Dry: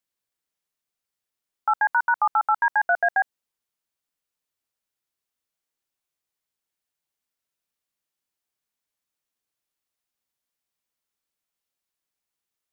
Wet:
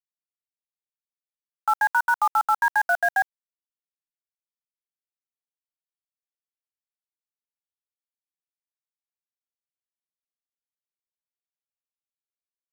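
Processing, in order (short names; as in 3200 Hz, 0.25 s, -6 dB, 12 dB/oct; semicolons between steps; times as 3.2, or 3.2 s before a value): HPF 640 Hz 24 dB/oct; bit-crush 6-bit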